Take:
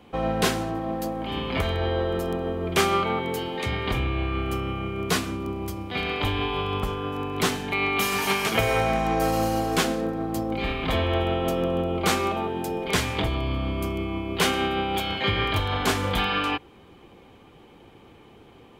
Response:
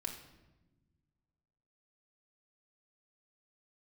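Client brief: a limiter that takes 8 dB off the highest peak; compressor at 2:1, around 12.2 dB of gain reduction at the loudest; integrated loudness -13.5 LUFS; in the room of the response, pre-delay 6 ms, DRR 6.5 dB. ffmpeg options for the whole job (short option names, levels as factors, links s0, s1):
-filter_complex "[0:a]acompressor=threshold=0.00891:ratio=2,alimiter=level_in=1.41:limit=0.0631:level=0:latency=1,volume=0.708,asplit=2[s0][s1];[1:a]atrim=start_sample=2205,adelay=6[s2];[s1][s2]afir=irnorm=-1:irlink=0,volume=0.501[s3];[s0][s3]amix=inputs=2:normalize=0,volume=13.3"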